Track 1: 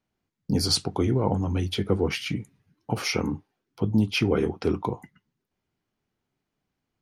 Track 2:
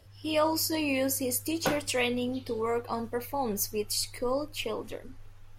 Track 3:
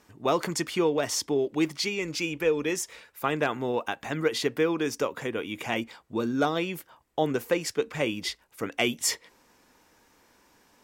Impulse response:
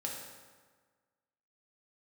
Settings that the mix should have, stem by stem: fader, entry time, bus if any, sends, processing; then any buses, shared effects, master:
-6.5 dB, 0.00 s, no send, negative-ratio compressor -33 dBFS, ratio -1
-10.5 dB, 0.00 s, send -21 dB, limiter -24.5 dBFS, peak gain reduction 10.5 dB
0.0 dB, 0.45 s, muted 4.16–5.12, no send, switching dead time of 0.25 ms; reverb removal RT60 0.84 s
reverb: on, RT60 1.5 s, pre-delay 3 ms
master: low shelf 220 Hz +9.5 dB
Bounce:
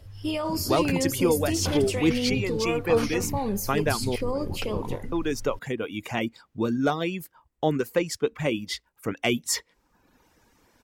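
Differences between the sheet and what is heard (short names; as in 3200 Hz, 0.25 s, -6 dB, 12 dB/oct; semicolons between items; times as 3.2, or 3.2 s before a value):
stem 2 -10.5 dB -> +1.5 dB; stem 3: missing switching dead time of 0.25 ms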